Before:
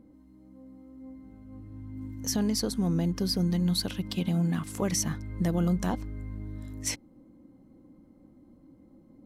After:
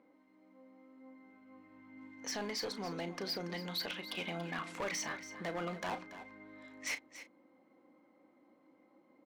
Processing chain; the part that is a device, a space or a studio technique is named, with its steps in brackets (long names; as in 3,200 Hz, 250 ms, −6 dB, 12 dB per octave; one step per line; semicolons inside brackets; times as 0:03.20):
megaphone (band-pass filter 660–3,200 Hz; parametric band 2,200 Hz +6.5 dB 0.27 octaves; hard clipping −36 dBFS, distortion −9 dB; double-tracking delay 35 ms −11 dB)
single-tap delay 283 ms −13.5 dB
level +2.5 dB